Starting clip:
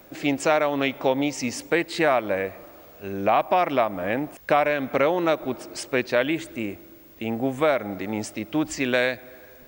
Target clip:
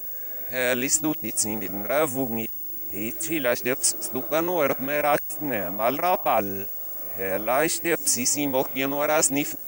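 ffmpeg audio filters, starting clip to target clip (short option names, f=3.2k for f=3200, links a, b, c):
-af "areverse,aexciter=amount=10.5:drive=2.4:freq=5.8k,volume=-2dB"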